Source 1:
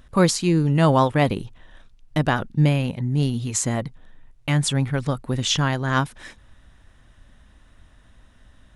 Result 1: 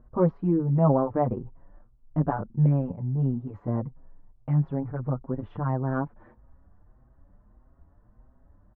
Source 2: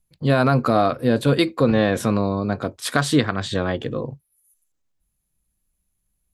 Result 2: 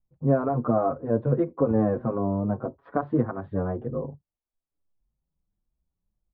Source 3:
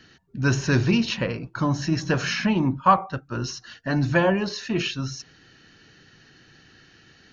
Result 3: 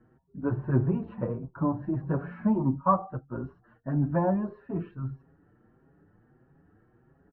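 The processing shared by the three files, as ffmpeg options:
-filter_complex "[0:a]lowpass=f=1.1k:w=0.5412,lowpass=f=1.1k:w=1.3066,asplit=2[a][b];[b]adelay=6.2,afreqshift=1.6[c];[a][c]amix=inputs=2:normalize=1,volume=-1.5dB"

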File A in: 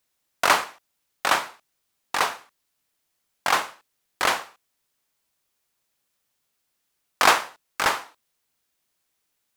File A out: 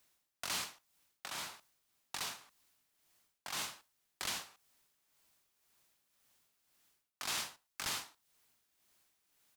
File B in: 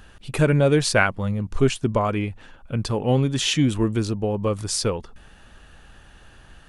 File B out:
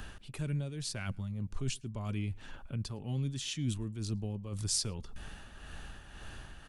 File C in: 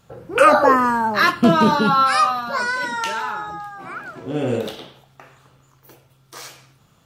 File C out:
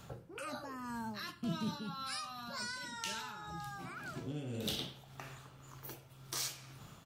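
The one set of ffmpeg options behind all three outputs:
-filter_complex "[0:a]bandreject=f=500:w=12,areverse,acompressor=threshold=-30dB:ratio=12,areverse,tremolo=f=1.9:d=0.56,asplit=2[a][b];[b]adelay=110.8,volume=-30dB,highshelf=f=4k:g=-2.49[c];[a][c]amix=inputs=2:normalize=0,acrossover=split=220|3000[d][e][f];[e]acompressor=threshold=-54dB:ratio=3[g];[d][g][f]amix=inputs=3:normalize=0,volume=3.5dB"

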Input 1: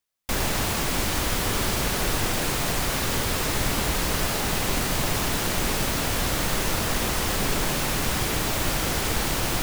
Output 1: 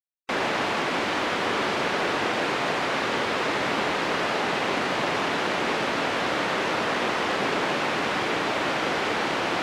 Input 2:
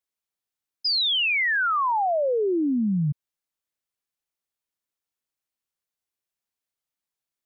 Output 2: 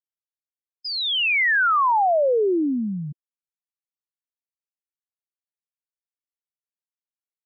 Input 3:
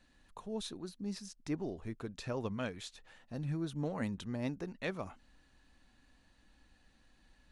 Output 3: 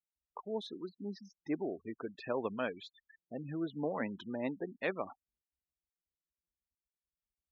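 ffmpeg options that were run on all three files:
-af "afftfilt=real='re*gte(hypot(re,im),0.00708)':imag='im*gte(hypot(re,im),0.00708)':win_size=1024:overlap=0.75,highpass=300,lowpass=2.8k,volume=4.5dB"

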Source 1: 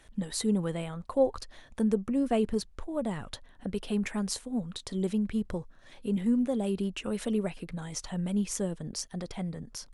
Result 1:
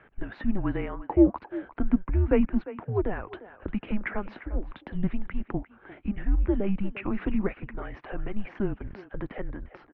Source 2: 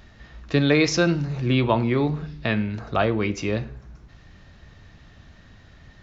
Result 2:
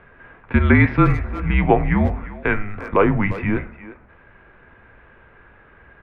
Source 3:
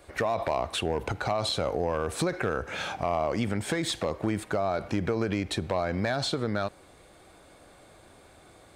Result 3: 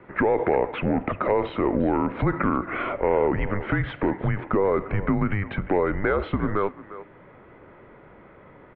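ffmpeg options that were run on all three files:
-filter_complex "[0:a]highpass=f=150:t=q:w=0.5412,highpass=f=150:t=q:w=1.307,lowpass=f=2.5k:t=q:w=0.5176,lowpass=f=2.5k:t=q:w=0.7071,lowpass=f=2.5k:t=q:w=1.932,afreqshift=-200,lowshelf=f=95:g=-4,asplit=2[a][b];[b]adelay=350,highpass=300,lowpass=3.4k,asoftclip=type=hard:threshold=-18dB,volume=-14dB[c];[a][c]amix=inputs=2:normalize=0,volume=7dB"

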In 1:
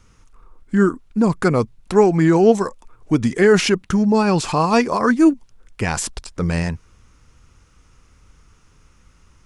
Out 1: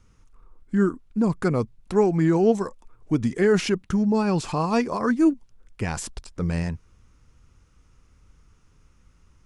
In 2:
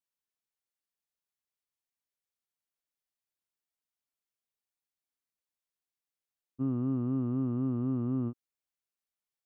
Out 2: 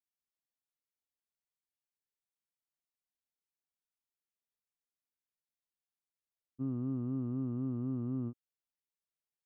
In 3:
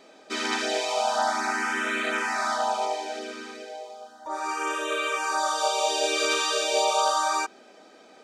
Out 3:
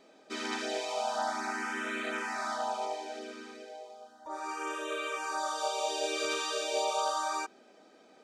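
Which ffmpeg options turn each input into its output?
-af "lowshelf=f=460:g=5,volume=-9dB"

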